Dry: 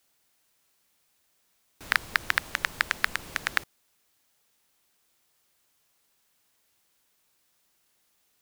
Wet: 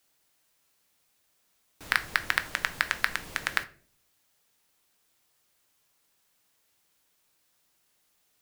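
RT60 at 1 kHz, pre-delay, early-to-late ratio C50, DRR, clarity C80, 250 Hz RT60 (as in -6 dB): 0.40 s, 6 ms, 17.5 dB, 10.0 dB, 21.5 dB, 0.70 s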